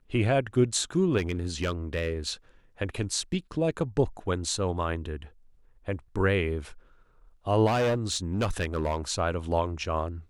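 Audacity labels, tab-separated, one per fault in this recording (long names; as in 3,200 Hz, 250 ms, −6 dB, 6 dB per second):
1.170000	2.300000	clipping −23 dBFS
7.660000	9.120000	clipping −22 dBFS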